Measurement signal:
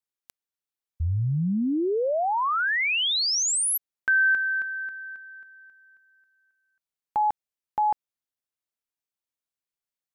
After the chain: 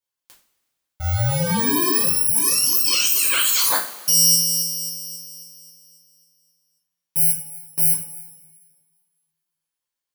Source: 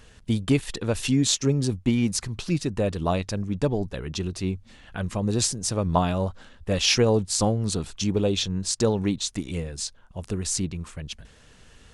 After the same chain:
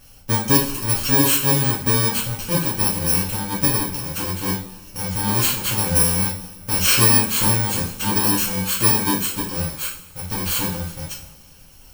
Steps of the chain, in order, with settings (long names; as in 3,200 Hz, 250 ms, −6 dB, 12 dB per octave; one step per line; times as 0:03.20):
samples in bit-reversed order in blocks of 64 samples
coupled-rooms reverb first 0.36 s, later 1.7 s, from −18 dB, DRR −5.5 dB
level −1 dB